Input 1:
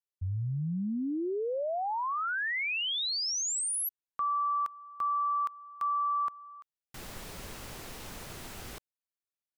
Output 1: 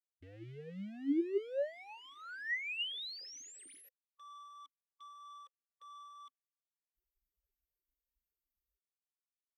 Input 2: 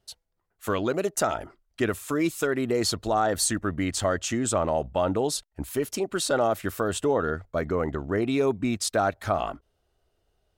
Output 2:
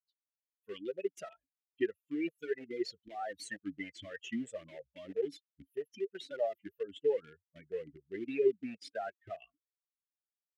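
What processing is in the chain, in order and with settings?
expander on every frequency bin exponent 3; in parallel at -7 dB: small samples zeroed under -34.5 dBFS; on the sum: talking filter e-i 3.1 Hz; trim +5 dB

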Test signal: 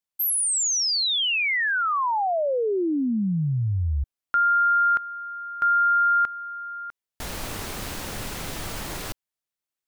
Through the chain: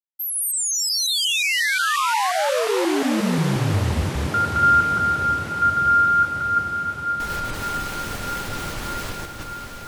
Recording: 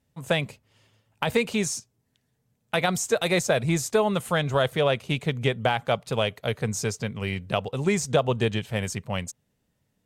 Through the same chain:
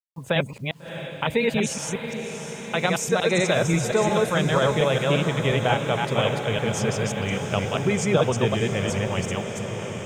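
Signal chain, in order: chunks repeated in reverse 178 ms, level -1 dB; spectral gate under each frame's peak -30 dB strong; treble shelf 6.5 kHz -3.5 dB; bit crusher 10-bit; band-stop 690 Hz, Q 19; on a send: echo that smears into a reverb 672 ms, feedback 72%, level -9 dB

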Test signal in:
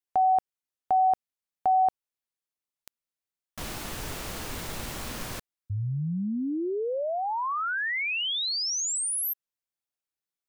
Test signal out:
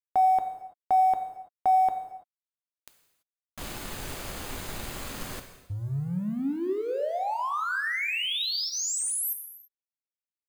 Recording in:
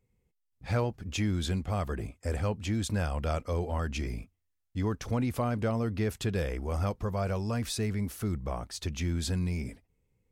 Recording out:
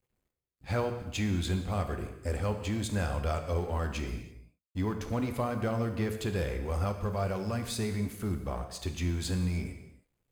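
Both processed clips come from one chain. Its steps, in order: companding laws mixed up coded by A; band-stop 5.6 kHz, Q 11; gated-style reverb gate 360 ms falling, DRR 5.5 dB

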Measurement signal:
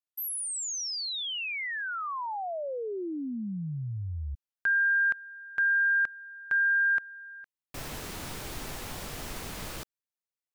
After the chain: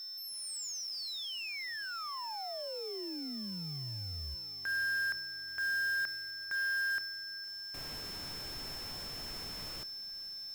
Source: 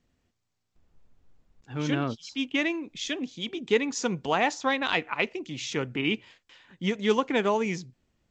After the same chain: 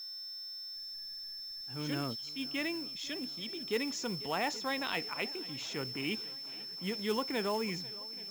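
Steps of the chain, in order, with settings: fade-in on the opening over 0.55 s; on a send: shuffle delay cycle 827 ms, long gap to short 1.5:1, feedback 59%, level -22 dB; on the sum: whistle 5.3 kHz -33 dBFS; short-mantissa float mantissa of 2-bit; transient shaper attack -3 dB, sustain +3 dB; trim -8.5 dB

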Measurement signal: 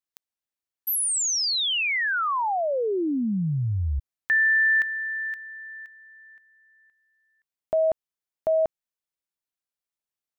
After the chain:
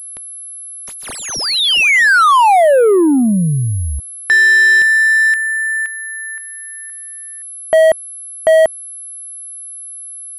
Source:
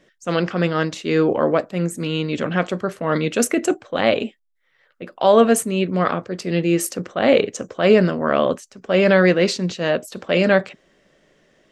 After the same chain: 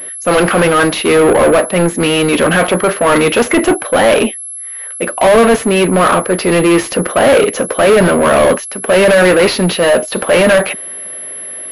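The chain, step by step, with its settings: overdrive pedal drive 31 dB, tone 2.4 kHz, clips at -1 dBFS; class-D stage that switches slowly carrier 11 kHz

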